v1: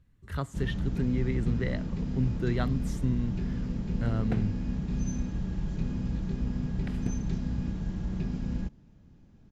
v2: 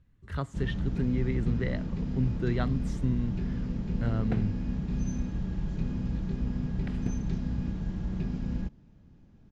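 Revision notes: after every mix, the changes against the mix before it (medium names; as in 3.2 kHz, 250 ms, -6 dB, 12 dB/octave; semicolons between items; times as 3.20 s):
master: add distance through air 56 m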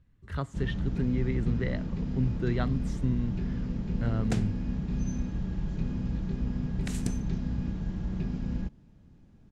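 second sound: remove distance through air 480 m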